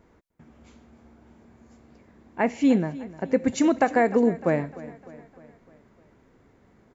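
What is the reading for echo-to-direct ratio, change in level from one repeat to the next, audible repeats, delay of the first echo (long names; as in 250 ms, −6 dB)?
−16.5 dB, −5.5 dB, 4, 303 ms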